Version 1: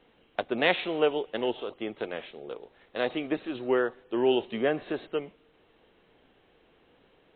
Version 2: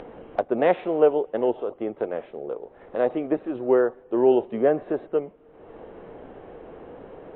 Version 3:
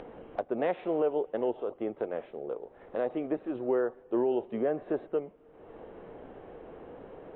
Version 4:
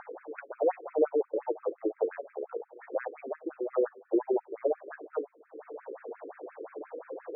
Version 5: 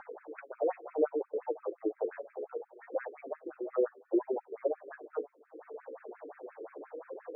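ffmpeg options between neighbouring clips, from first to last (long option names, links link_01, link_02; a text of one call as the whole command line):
ffmpeg -i in.wav -af "lowpass=1200,equalizer=frequency=550:width_type=o:width=1.3:gain=5,acompressor=mode=upward:threshold=-31dB:ratio=2.5,volume=3dB" out.wav
ffmpeg -i in.wav -af "alimiter=limit=-15dB:level=0:latency=1:release=197,volume=-4.5dB" out.wav
ffmpeg -i in.wav -filter_complex "[0:a]asplit=2[link_01][link_02];[link_02]acompressor=mode=upward:threshold=-30dB:ratio=2.5,volume=-0.5dB[link_03];[link_01][link_03]amix=inputs=2:normalize=0,flanger=delay=5.7:depth=3:regen=70:speed=0.56:shape=triangular,afftfilt=real='re*between(b*sr/1024,360*pow(1900/360,0.5+0.5*sin(2*PI*5.7*pts/sr))/1.41,360*pow(1900/360,0.5+0.5*sin(2*PI*5.7*pts/sr))*1.41)':imag='im*between(b*sr/1024,360*pow(1900/360,0.5+0.5*sin(2*PI*5.7*pts/sr))/1.41,360*pow(1900/360,0.5+0.5*sin(2*PI*5.7*pts/sr))*1.41)':win_size=1024:overlap=0.75,volume=4dB" out.wav
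ffmpeg -i in.wav -af "flanger=delay=3.6:depth=5.6:regen=-18:speed=0.68:shape=triangular" out.wav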